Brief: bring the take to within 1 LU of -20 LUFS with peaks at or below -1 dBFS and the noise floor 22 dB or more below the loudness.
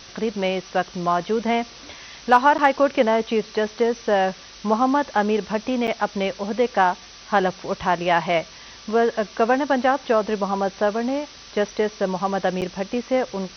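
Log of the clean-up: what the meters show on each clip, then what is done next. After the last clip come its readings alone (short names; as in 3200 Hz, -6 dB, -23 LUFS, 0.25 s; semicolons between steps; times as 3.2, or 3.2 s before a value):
dropouts 3; longest dropout 8.0 ms; noise floor -43 dBFS; noise floor target -44 dBFS; loudness -22.0 LUFS; peak -4.5 dBFS; loudness target -20.0 LUFS
-> interpolate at 2.58/5.87/12.61, 8 ms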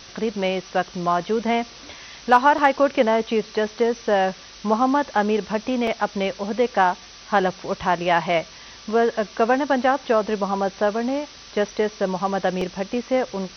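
dropouts 0; noise floor -43 dBFS; noise floor target -44 dBFS
-> noise print and reduce 6 dB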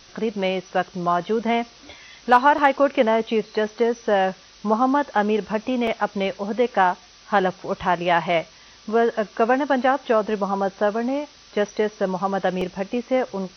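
noise floor -49 dBFS; loudness -22.0 LUFS; peak -4.5 dBFS; loudness target -20.0 LUFS
-> gain +2 dB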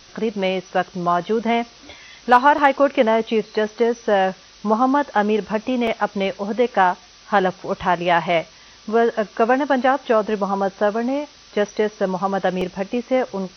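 loudness -20.0 LUFS; peak -2.5 dBFS; noise floor -47 dBFS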